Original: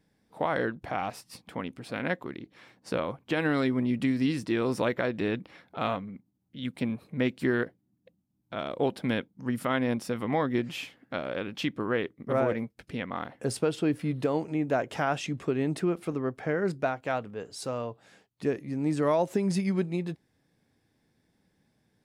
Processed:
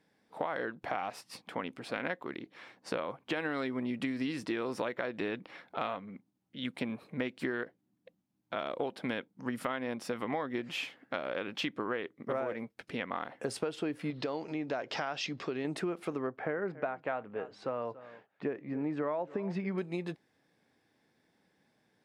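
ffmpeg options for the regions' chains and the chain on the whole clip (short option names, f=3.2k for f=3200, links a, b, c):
-filter_complex "[0:a]asettb=1/sr,asplit=3[a][b][c];[a]atrim=end=14.104[d];[b]atrim=start=14.1:end=15.65,asetpts=PTS-STARTPTS,afade=t=in:d=0.004:c=qsin,afade=t=out:st=1.546:d=0.004:c=qsin,acompressor=threshold=-36dB:ratio=1.5:attack=3.2:release=140:knee=1:detection=peak,lowpass=f=4.9k:t=q:w=3.1[e];[c]atrim=start=15.646[f];[d][e]acrossfade=d=0.004:c1=hsin:c2=qsin[g];[g][f]acrossfade=d=0.004:c1=qsin:c2=hsin,asettb=1/sr,asplit=3[h][i][j];[h]atrim=end=16.274[k];[i]atrim=start=16.27:end=19.78,asetpts=PTS-STARTPTS,afade=t=in:d=0.004:c=qsin,afade=t=out:st=3.506:d=0.004:c=qsin,lowpass=2.2k,aecho=1:1:283:0.1,atrim=end_sample=154791[l];[j]atrim=start=19.776[m];[k][l]acrossfade=d=0.004:c1=hsin:c2=qsin[n];[n][m]acrossfade=d=0.004:c1=qsin:c2=hsin,highpass=f=490:p=1,aemphasis=mode=reproduction:type=cd,acompressor=threshold=-35dB:ratio=6,volume=4dB"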